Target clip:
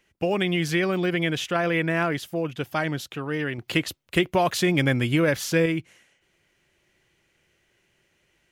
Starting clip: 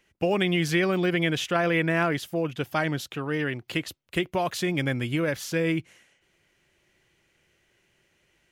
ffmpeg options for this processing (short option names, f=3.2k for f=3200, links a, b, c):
-filter_complex "[0:a]asettb=1/sr,asplit=3[a][b][c];[a]atrim=end=3.584[d];[b]atrim=start=3.58:end=5.66,asetpts=PTS-STARTPTS,afade=t=in:d=0.004:c=qsin,afade=t=out:st=2.076:d=0.004:c=qsin,acontrast=29[e];[c]atrim=start=5.656[f];[d][e]acrossfade=d=0.004:c1=hsin:c2=qsin[g];[g][f]acrossfade=d=0.004:c1=qsin:c2=hsin"